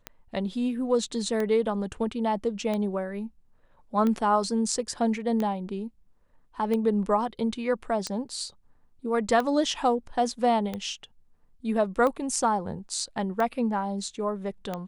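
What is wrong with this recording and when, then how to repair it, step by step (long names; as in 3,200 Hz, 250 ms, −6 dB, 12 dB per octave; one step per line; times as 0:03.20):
scratch tick 45 rpm −17 dBFS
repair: click removal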